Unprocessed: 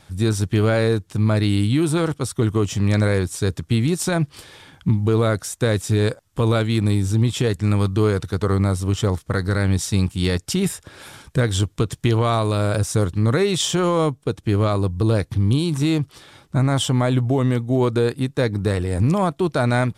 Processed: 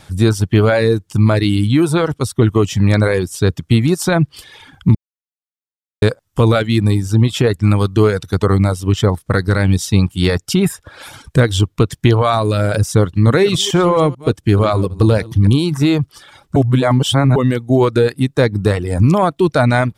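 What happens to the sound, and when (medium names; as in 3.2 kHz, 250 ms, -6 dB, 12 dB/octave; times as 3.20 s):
4.95–6.02 s: mute
13.12–15.50 s: chunks repeated in reverse 147 ms, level -11 dB
16.56–17.36 s: reverse
whole clip: reverb removal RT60 0.91 s; dynamic bell 8 kHz, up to -6 dB, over -45 dBFS, Q 0.95; trim +7.5 dB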